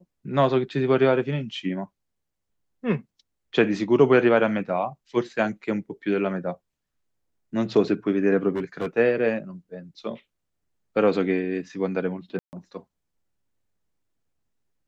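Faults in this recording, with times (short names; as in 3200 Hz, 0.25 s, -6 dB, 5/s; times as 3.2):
8.55–8.87 clipped -22.5 dBFS
12.39–12.53 gap 0.139 s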